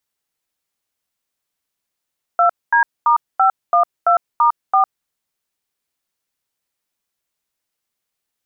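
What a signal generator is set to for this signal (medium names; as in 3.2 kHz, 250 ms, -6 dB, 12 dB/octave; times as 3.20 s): DTMF "2D*512*4", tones 105 ms, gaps 230 ms, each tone -12.5 dBFS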